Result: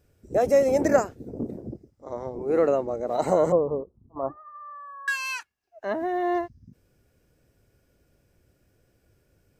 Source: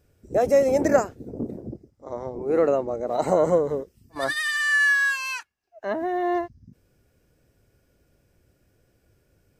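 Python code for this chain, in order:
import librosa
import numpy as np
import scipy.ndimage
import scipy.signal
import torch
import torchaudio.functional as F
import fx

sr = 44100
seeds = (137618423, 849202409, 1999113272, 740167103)

y = fx.steep_lowpass(x, sr, hz=1200.0, slope=72, at=(3.52, 5.08))
y = y * librosa.db_to_amplitude(-1.0)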